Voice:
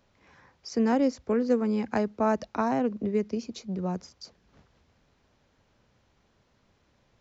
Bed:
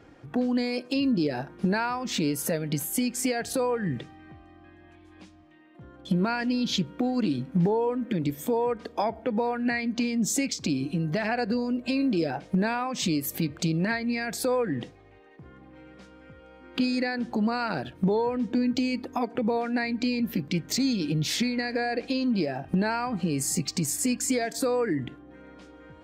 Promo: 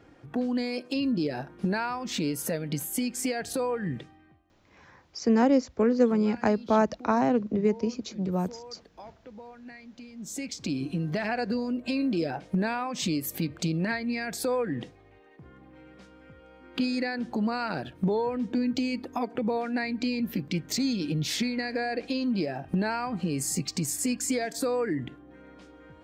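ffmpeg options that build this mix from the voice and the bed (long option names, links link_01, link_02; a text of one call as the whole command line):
ffmpeg -i stem1.wav -i stem2.wav -filter_complex "[0:a]adelay=4500,volume=2.5dB[link_01];[1:a]volume=14.5dB,afade=type=out:start_time=3.92:duration=0.51:silence=0.149624,afade=type=in:start_time=10.14:duration=0.69:silence=0.141254[link_02];[link_01][link_02]amix=inputs=2:normalize=0" out.wav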